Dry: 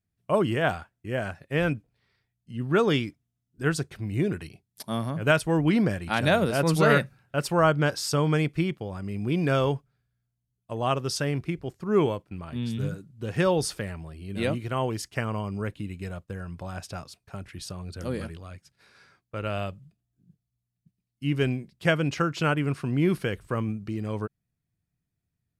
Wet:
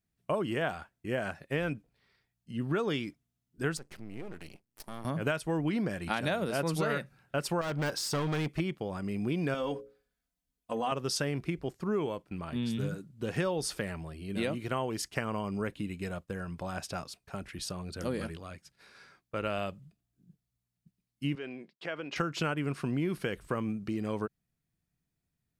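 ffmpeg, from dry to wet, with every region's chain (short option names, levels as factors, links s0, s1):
-filter_complex "[0:a]asettb=1/sr,asplit=3[s0][s1][s2];[s0]atrim=end=3.774[s3];[s1]atrim=start=3.77:end=5.05,asetpts=PTS-STARTPTS,afade=t=in:d=0.004:c=qsin,afade=t=out:st=1.276:d=0.004:c=qsin,bandreject=f=3600:w=6.2,acompressor=threshold=0.01:ratio=2.5:attack=3.2:release=140:knee=1:detection=peak,aeval=exprs='max(val(0),0)':c=same[s4];[s2]atrim=start=5.046[s5];[s3][s4]acrossfade=d=0.004:c1=hsin:c2=qsin[s6];[s6][s5]acrossfade=d=0.004:c1=qsin:c2=hsin,asettb=1/sr,asplit=3[s7][s8][s9];[s7]atrim=end=7.614[s10];[s8]atrim=start=7.61:end=8.6,asetpts=PTS-STARTPTS,afade=t=in:d=0.004:c=qsin,afade=t=out:st=0.986:d=0.004:c=qsin,volume=16.8,asoftclip=hard,volume=0.0596,deesser=0.65[s11];[s9]atrim=start=8.596[s12];[s10][s11]acrossfade=d=0.004:c1=hsin:c2=qsin[s13];[s13][s12]acrossfade=d=0.004:c1=qsin:c2=hsin,asettb=1/sr,asplit=3[s14][s15][s16];[s14]atrim=end=9.544[s17];[s15]atrim=start=9.54:end=10.92,asetpts=PTS-STARTPTS,afade=t=in:d=0.004:c=qsin,afade=t=out:st=1.376:d=0.004:c=qsin,bandreject=f=60:t=h:w=6,bandreject=f=120:t=h:w=6,bandreject=f=180:t=h:w=6,bandreject=f=240:t=h:w=6,bandreject=f=300:t=h:w=6,bandreject=f=360:t=h:w=6,bandreject=f=420:t=h:w=6,bandreject=f=480:t=h:w=6,bandreject=f=540:t=h:w=6,bandreject=f=600:t=h:w=6,aecho=1:1:4:0.72,atrim=end_sample=60858,acompressor=threshold=0.0355:ratio=2:attack=3.2:release=140:knee=1:detection=peak[s18];[s16]atrim=start=10.916[s19];[s17][s18]acrossfade=d=0.004:c1=hsin:c2=qsin[s20];[s20][s19]acrossfade=d=0.004:c1=qsin:c2=hsin,asettb=1/sr,asplit=3[s21][s22][s23];[s21]atrim=end=21.354[s24];[s22]atrim=start=21.35:end=22.16,asetpts=PTS-STARTPTS,afade=t=in:d=0.004:c=qsin,afade=t=out:st=0.806:d=0.004:c=qsin,agate=range=0.0224:threshold=0.002:ratio=3:release=100:detection=peak,acompressor=threshold=0.0316:ratio=12:attack=3.2:release=140:knee=1:detection=peak,highpass=340,lowpass=3700[s25];[s23]atrim=start=22.156[s26];[s24][s25]acrossfade=d=0.004:c1=hsin:c2=qsin[s27];[s27][s26]acrossfade=d=0.004:c1=qsin:c2=hsin,equalizer=f=100:w=1.9:g=-8.5,acompressor=threshold=0.0355:ratio=6,volume=1.12"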